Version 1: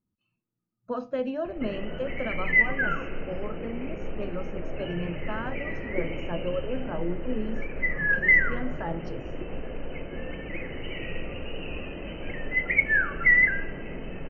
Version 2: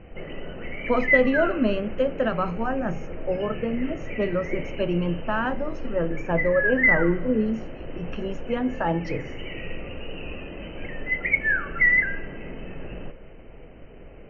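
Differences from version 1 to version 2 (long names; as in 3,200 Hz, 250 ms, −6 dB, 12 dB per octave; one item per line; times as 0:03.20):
speech +9.0 dB
background: entry −1.45 s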